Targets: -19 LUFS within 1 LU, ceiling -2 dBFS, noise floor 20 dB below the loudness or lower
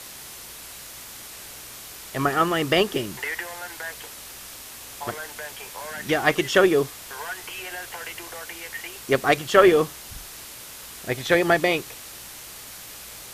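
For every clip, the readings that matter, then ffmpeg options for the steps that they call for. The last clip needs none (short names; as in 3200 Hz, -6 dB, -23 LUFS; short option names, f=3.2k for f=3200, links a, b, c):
noise floor -41 dBFS; noise floor target -44 dBFS; loudness -23.5 LUFS; peak -3.0 dBFS; loudness target -19.0 LUFS
-> -af "afftdn=nr=6:nf=-41"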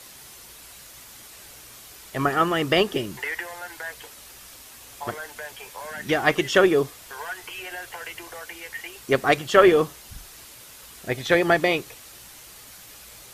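noise floor -46 dBFS; loudness -23.0 LUFS; peak -3.0 dBFS; loudness target -19.0 LUFS
-> -af "volume=4dB,alimiter=limit=-2dB:level=0:latency=1"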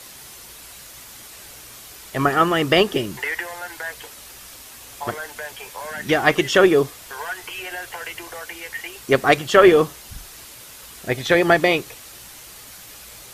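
loudness -19.5 LUFS; peak -2.0 dBFS; noise floor -42 dBFS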